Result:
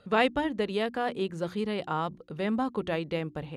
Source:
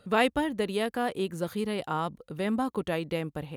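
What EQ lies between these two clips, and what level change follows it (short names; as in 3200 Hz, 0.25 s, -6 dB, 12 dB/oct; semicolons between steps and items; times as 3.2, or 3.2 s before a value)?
LPF 5900 Hz 12 dB/oct; notches 60/120/180/240/300/360 Hz; 0.0 dB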